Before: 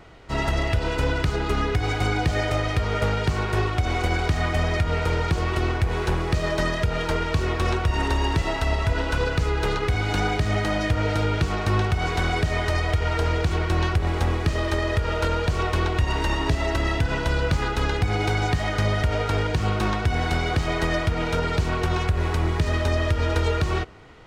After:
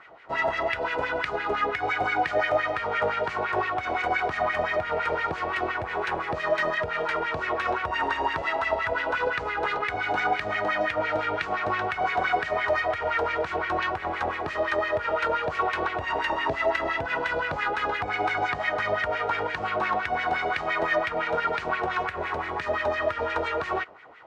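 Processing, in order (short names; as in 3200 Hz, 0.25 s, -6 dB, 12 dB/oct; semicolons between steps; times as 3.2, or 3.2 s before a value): wah 5.8 Hz 610–2100 Hz, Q 2.6; gain +7.5 dB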